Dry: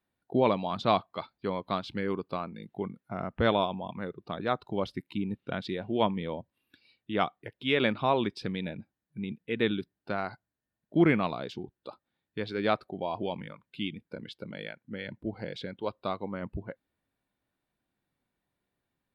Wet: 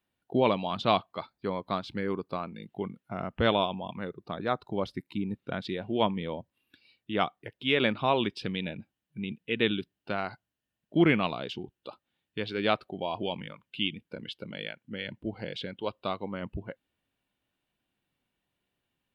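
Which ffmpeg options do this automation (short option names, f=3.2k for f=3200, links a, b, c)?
-af "asetnsamples=n=441:p=0,asendcmd='1.12 equalizer g -2.5;2.43 equalizer g 8;4.09 equalizer g -2;5.65 equalizer g 4;8.08 equalizer g 11',equalizer=f=2.9k:t=o:w=0.45:g=8"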